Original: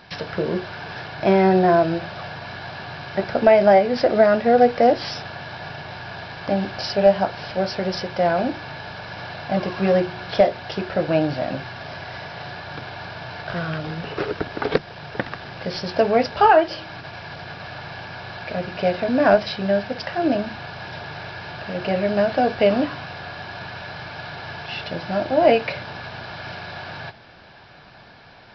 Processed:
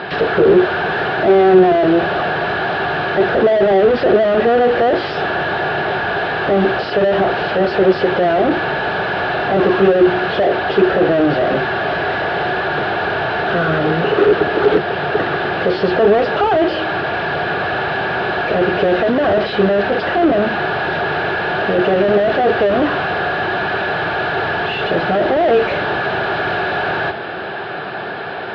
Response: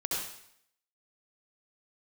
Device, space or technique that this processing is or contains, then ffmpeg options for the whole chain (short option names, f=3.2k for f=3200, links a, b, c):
overdrive pedal into a guitar cabinet: -filter_complex "[0:a]asplit=2[a][b];[b]highpass=f=720:p=1,volume=40dB,asoftclip=type=tanh:threshold=-1.5dB[c];[a][c]amix=inputs=2:normalize=0,lowpass=f=1k:p=1,volume=-6dB,highpass=75,equalizer=f=120:t=q:w=4:g=-3,equalizer=f=250:t=q:w=4:g=-5,equalizer=f=390:t=q:w=4:g=8,equalizer=f=570:t=q:w=4:g=-4,equalizer=f=980:t=q:w=4:g=-8,equalizer=f=2.2k:t=q:w=4:g=-7,lowpass=f=3.6k:w=0.5412,lowpass=f=3.6k:w=1.3066,volume=-2.5dB"